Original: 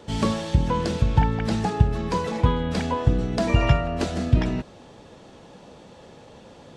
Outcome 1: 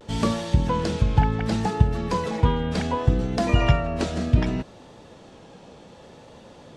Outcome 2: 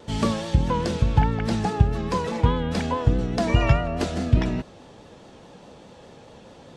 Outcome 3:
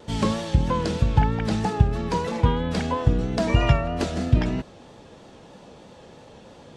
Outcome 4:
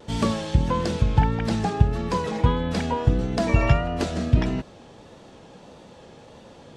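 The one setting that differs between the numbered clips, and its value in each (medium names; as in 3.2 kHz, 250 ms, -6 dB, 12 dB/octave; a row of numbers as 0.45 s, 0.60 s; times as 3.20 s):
vibrato, rate: 0.67 Hz, 4.8 Hz, 3.1 Hz, 1.6 Hz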